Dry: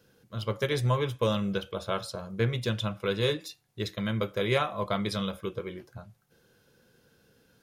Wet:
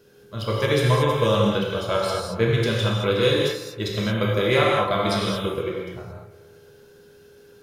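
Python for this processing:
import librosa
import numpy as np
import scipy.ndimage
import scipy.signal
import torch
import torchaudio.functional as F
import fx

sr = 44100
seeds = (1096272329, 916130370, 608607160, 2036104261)

y = fx.echo_bbd(x, sr, ms=115, stages=2048, feedback_pct=65, wet_db=-15)
y = y + 10.0 ** (-58.0 / 20.0) * np.sin(2.0 * np.pi * 410.0 * np.arange(len(y)) / sr)
y = fx.rev_gated(y, sr, seeds[0], gate_ms=250, shape='flat', drr_db=-3.0)
y = y * librosa.db_to_amplitude(4.0)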